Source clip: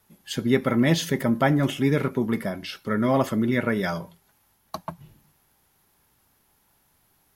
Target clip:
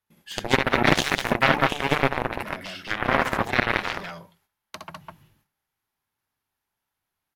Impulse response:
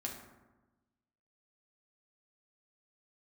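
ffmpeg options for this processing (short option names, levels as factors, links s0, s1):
-filter_complex "[0:a]equalizer=f=99:t=o:w=0.25:g=5.5,agate=range=0.141:threshold=0.00141:ratio=16:detection=peak,aecho=1:1:64.14|204.1:0.708|0.708,asplit=2[s0][s1];[s1]acompressor=threshold=0.0501:ratio=6,volume=0.794[s2];[s0][s2]amix=inputs=2:normalize=0,aeval=exprs='0.891*(cos(1*acos(clip(val(0)/0.891,-1,1)))-cos(1*PI/2))+0.178*(cos(7*acos(clip(val(0)/0.891,-1,1)))-cos(7*PI/2))':c=same,equalizer=f=2000:t=o:w=3:g=8,volume=0.596"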